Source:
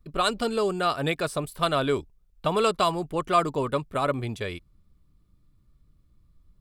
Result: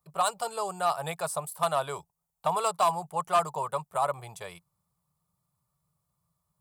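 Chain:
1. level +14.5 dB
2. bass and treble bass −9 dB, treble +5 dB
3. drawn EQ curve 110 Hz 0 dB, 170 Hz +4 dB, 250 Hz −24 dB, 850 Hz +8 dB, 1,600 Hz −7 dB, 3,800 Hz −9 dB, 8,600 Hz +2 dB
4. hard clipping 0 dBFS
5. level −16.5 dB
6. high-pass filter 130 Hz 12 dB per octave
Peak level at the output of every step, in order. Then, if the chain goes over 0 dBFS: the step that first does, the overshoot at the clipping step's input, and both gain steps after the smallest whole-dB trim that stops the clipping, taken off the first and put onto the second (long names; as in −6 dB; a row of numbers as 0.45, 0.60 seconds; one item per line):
+6.0, +6.5, +6.5, 0.0, −16.5, −14.5 dBFS
step 1, 6.5 dB
step 1 +7.5 dB, step 5 −9.5 dB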